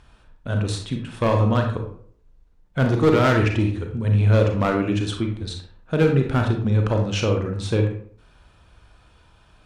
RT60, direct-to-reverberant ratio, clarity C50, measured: 0.55 s, 3.0 dB, 5.5 dB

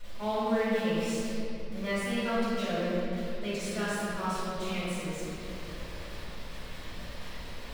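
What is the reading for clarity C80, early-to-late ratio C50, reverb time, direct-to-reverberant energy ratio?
−2.5 dB, −5.5 dB, 3.0 s, −16.0 dB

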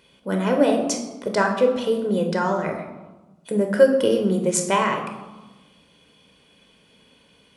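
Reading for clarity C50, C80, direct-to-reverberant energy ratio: 6.5 dB, 9.0 dB, 3.0 dB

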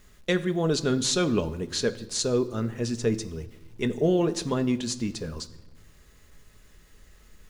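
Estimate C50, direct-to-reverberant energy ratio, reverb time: 16.5 dB, 8.0 dB, 1.1 s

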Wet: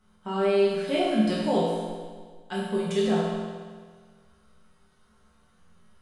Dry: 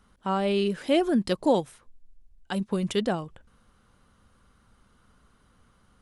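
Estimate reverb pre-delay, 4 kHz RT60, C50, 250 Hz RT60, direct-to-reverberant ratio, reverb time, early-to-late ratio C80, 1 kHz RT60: 5 ms, 1.5 s, −1.0 dB, 1.6 s, −8.0 dB, 1.6 s, 1.5 dB, 1.6 s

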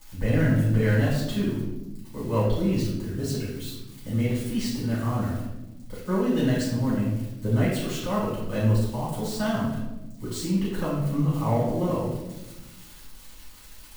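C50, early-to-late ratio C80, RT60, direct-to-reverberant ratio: 1.0 dB, 4.0 dB, 1.0 s, −9.5 dB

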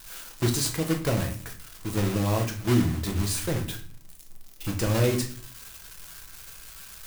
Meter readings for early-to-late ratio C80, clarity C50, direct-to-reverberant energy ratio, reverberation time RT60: 15.0 dB, 10.5 dB, 2.0 dB, 0.45 s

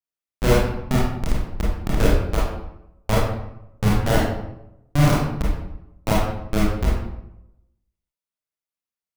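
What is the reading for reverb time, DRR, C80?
0.85 s, −6.0 dB, 4.0 dB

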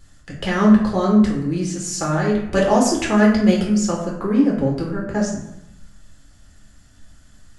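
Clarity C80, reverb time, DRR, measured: 7.0 dB, 0.80 s, −3.0 dB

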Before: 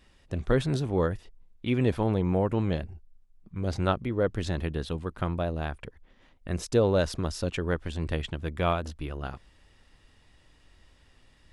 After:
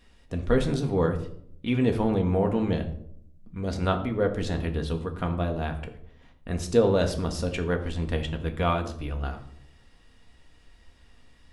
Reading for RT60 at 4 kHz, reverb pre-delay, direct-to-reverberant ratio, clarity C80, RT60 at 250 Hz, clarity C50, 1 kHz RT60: 0.40 s, 4 ms, 4.0 dB, 14.0 dB, 0.95 s, 11.5 dB, 0.55 s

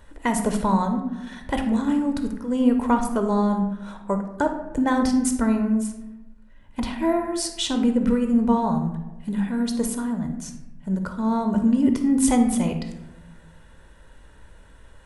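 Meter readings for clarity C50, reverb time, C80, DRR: 7.0 dB, 1.0 s, 10.0 dB, 5.5 dB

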